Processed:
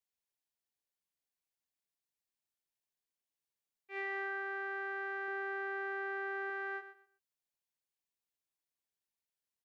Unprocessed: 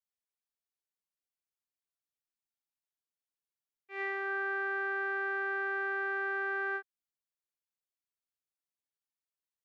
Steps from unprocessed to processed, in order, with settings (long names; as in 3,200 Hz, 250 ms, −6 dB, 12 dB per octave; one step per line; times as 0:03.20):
0:05.28–0:06.50: low-shelf EQ 450 Hz +5 dB
brickwall limiter −29.5 dBFS, peak gain reduction 4 dB
parametric band 1,300 Hz −8 dB 0.23 octaves
on a send: repeating echo 124 ms, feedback 21%, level −12 dB